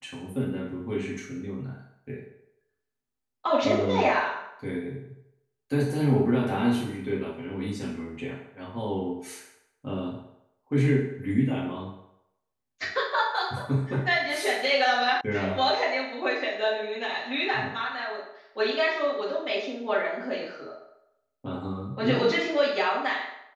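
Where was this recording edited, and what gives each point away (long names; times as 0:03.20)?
0:15.21: cut off before it has died away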